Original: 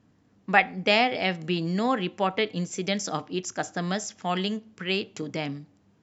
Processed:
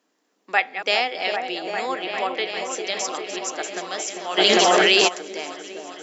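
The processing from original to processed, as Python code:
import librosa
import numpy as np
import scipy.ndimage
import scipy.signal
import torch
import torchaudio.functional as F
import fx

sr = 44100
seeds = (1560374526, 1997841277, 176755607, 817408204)

y = fx.reverse_delay(x, sr, ms=227, wet_db=-11)
y = scipy.signal.sosfilt(scipy.signal.butter(4, 340.0, 'highpass', fs=sr, output='sos'), y)
y = fx.high_shelf(y, sr, hz=3600.0, db=9.5)
y = fx.echo_opening(y, sr, ms=399, hz=750, octaves=1, feedback_pct=70, wet_db=-3)
y = fx.env_flatten(y, sr, amount_pct=100, at=(4.37, 5.07), fade=0.02)
y = y * 10.0 ** (-2.0 / 20.0)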